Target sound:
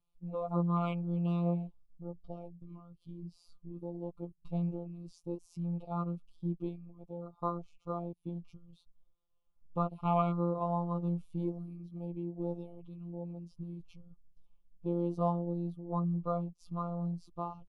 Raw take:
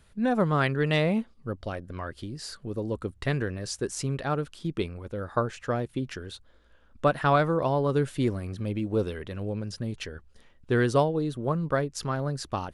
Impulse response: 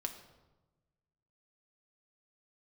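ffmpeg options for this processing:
-af "equalizer=f=250:t=o:w=1:g=-6,equalizer=f=500:t=o:w=1:g=-6,equalizer=f=2k:t=o:w=1:g=-6,equalizer=f=4k:t=o:w=1:g=-4,equalizer=f=8k:t=o:w=1:g=-11,afwtdn=0.0224,asuperstop=centerf=1700:order=12:qfactor=1.9,afftfilt=real='hypot(re,im)*cos(PI*b)':imag='0':win_size=1024:overlap=0.75,atempo=0.72"

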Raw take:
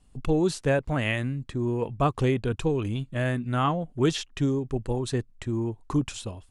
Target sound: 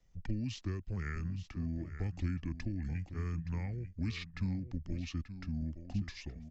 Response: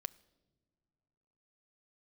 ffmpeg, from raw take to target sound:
-filter_complex "[0:a]acrossover=split=200|3000[a][b][c];[b]acompressor=threshold=-28dB:ratio=6[d];[a][d][c]amix=inputs=3:normalize=0,asplit=2[e][f];[f]aecho=0:1:878:0.251[g];[e][g]amix=inputs=2:normalize=0,asetrate=30296,aresample=44100,atempo=1.45565,acrossover=split=330|1600[h][i][j];[i]acompressor=threshold=-52dB:ratio=4[k];[h][k][j]amix=inputs=3:normalize=0,highshelf=f=9.4k:g=-11.5,volume=-8dB"

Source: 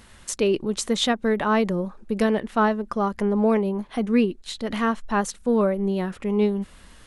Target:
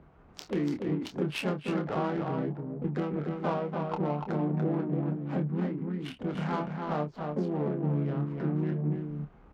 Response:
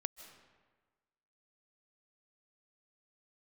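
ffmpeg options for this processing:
-filter_complex "[0:a]acrossover=split=150|1700[a][b][c];[a]aeval=exprs='clip(val(0),-1,0.01)':c=same[d];[d][b][c]amix=inputs=3:normalize=0,asplit=3[e][f][g];[f]asetrate=52444,aresample=44100,atempo=0.840896,volume=-7dB[h];[g]asetrate=66075,aresample=44100,atempo=0.66742,volume=-11dB[i];[e][h][i]amix=inputs=3:normalize=0,acompressor=threshold=-26dB:ratio=6,asplit=2[j][k];[k]aecho=0:1:215:0.631[l];[j][l]amix=inputs=2:normalize=0,adynamicsmooth=sensitivity=3:basefreq=1k,highpass=45,lowshelf=f=70:g=-9,asplit=2[m][n];[n]adelay=20,volume=-7dB[o];[m][o]amix=inputs=2:normalize=0,asetrate=32667,aresample=44100,volume=-2dB"

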